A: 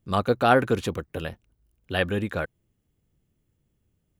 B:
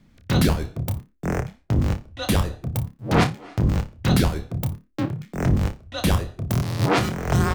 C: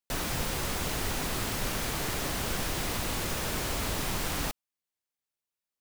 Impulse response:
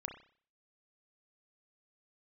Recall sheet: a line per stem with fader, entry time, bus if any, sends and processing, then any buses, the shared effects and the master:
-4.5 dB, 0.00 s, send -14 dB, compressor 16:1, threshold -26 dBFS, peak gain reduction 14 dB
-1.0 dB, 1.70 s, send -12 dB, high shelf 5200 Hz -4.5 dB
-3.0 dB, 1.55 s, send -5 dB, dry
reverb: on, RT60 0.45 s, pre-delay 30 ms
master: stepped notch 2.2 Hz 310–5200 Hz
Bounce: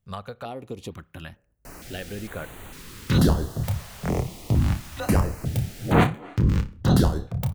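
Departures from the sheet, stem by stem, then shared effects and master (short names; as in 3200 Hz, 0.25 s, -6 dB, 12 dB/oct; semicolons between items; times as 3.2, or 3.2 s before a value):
stem B: entry 1.70 s -> 2.80 s; stem C -3.0 dB -> -12.5 dB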